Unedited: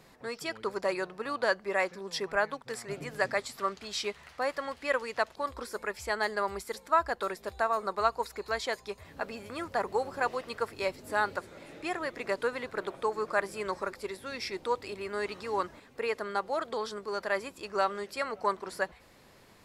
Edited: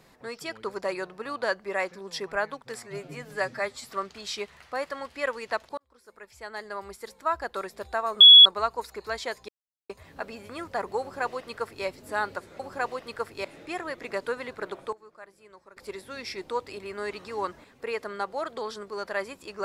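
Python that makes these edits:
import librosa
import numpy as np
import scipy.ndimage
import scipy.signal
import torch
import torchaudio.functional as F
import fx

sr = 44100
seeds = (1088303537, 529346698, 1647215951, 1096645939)

y = fx.edit(x, sr, fx.stretch_span(start_s=2.83, length_s=0.67, factor=1.5),
    fx.fade_in_span(start_s=5.44, length_s=1.87),
    fx.insert_tone(at_s=7.87, length_s=0.25, hz=3370.0, db=-7.0),
    fx.insert_silence(at_s=8.9, length_s=0.41),
    fx.duplicate(start_s=10.01, length_s=0.85, to_s=11.6),
    fx.fade_down_up(start_s=12.72, length_s=1.56, db=-18.5, fade_s=0.36, curve='log'), tone=tone)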